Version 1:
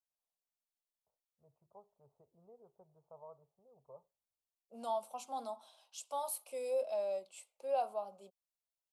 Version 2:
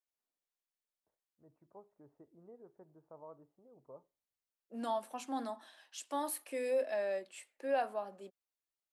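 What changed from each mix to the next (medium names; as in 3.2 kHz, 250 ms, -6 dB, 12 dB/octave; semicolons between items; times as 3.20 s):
master: remove static phaser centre 730 Hz, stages 4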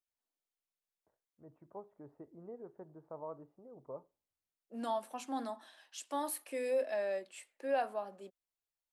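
first voice +7.5 dB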